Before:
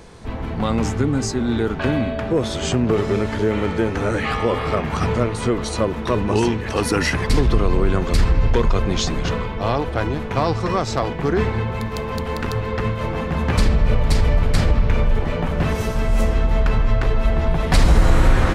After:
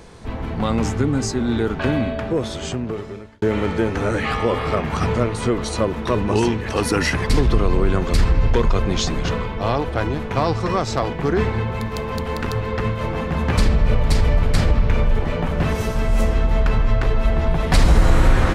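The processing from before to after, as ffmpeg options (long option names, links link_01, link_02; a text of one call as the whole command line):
ffmpeg -i in.wav -filter_complex "[0:a]asplit=2[link_01][link_02];[link_01]atrim=end=3.42,asetpts=PTS-STARTPTS,afade=type=out:start_time=2.08:duration=1.34[link_03];[link_02]atrim=start=3.42,asetpts=PTS-STARTPTS,afade=type=in:duration=0.004:curve=hsin[link_04];[link_03][link_04]concat=n=2:v=0:a=1" out.wav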